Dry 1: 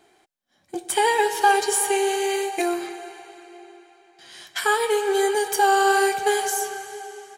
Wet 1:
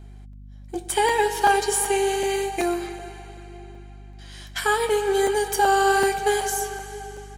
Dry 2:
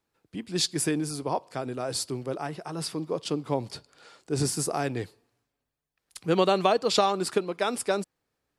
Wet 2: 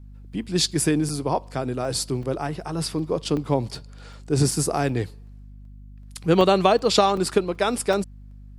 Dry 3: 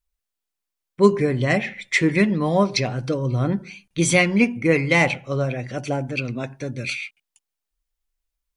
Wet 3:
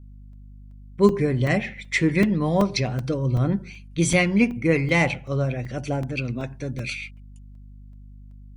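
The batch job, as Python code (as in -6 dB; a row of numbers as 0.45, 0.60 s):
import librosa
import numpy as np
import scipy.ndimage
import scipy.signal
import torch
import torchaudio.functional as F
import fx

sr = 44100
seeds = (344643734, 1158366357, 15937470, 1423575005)

y = fx.add_hum(x, sr, base_hz=50, snr_db=23)
y = fx.low_shelf(y, sr, hz=200.0, db=6.5)
y = fx.buffer_crackle(y, sr, first_s=0.33, period_s=0.38, block=128, kind='zero')
y = y * 10.0 ** (-24 / 20.0) / np.sqrt(np.mean(np.square(y)))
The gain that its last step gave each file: -1.0, +4.0, -3.5 dB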